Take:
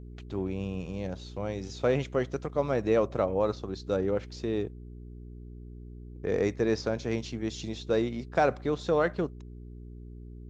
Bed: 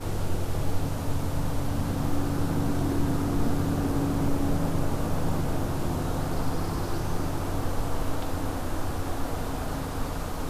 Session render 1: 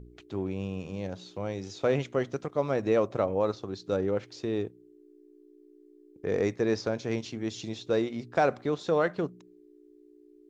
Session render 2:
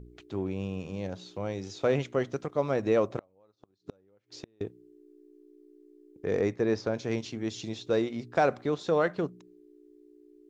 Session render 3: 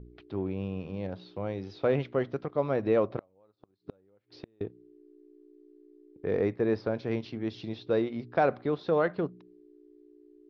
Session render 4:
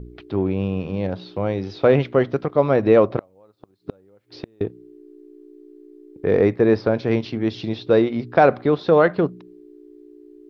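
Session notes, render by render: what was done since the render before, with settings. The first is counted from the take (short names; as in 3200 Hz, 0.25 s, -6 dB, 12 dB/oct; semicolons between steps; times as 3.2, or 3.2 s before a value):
de-hum 60 Hz, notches 4
3.17–4.61 flipped gate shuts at -26 dBFS, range -36 dB; 6.4–6.94 high shelf 3300 Hz -6.5 dB
steep low-pass 5100 Hz 48 dB/oct; high shelf 3300 Hz -8.5 dB
gain +11 dB; limiter -3 dBFS, peak gain reduction 1 dB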